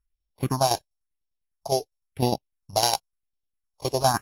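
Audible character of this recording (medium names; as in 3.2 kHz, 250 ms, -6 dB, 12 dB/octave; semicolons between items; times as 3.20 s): a buzz of ramps at a fixed pitch in blocks of 8 samples; tremolo saw down 9.9 Hz, depth 65%; phasing stages 4, 0.96 Hz, lowest notch 210–1600 Hz; AAC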